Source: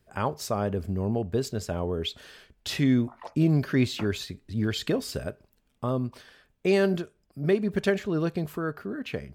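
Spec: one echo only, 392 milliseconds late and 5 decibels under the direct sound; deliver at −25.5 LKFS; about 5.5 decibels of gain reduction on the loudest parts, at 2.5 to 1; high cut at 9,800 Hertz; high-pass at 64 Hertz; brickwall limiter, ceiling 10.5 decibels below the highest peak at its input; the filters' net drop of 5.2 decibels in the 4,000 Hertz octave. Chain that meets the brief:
high-pass filter 64 Hz
low-pass filter 9,800 Hz
parametric band 4,000 Hz −6.5 dB
downward compressor 2.5 to 1, threshold −26 dBFS
brickwall limiter −26 dBFS
single-tap delay 392 ms −5 dB
level +10 dB

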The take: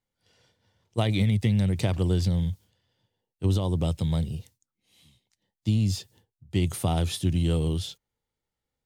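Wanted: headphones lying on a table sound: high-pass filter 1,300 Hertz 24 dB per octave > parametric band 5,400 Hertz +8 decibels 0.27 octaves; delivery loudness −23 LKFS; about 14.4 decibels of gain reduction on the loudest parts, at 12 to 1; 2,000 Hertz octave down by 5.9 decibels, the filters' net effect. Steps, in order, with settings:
parametric band 2,000 Hz −7.5 dB
downward compressor 12 to 1, threshold −34 dBFS
high-pass filter 1,300 Hz 24 dB per octave
parametric band 5,400 Hz +8 dB 0.27 octaves
level +25.5 dB

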